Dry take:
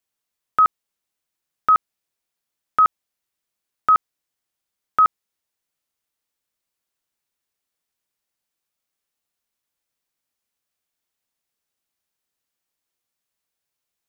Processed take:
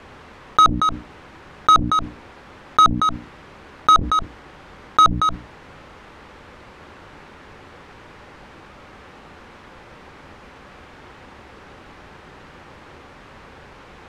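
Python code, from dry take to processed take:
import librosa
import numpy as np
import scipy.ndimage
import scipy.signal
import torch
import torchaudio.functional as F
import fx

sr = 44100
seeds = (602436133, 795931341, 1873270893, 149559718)

p1 = fx.octave_divider(x, sr, octaves=2, level_db=1.0)
p2 = scipy.signal.sosfilt(scipy.signal.butter(2, 1600.0, 'lowpass', fs=sr, output='sos'), p1)
p3 = fx.low_shelf(p2, sr, hz=130.0, db=-9.0)
p4 = fx.notch(p3, sr, hz=670.0, q=12.0)
p5 = 10.0 ** (-18.0 / 20.0) * np.tanh(p4 / 10.0 ** (-18.0 / 20.0))
p6 = fx.low_shelf(p5, sr, hz=400.0, db=6.0)
p7 = fx.hum_notches(p6, sr, base_hz=60, count=5)
p8 = p7 + fx.echo_single(p7, sr, ms=230, db=-22.0, dry=0)
p9 = fx.env_flatten(p8, sr, amount_pct=70)
y = p9 * 10.0 ** (9.0 / 20.0)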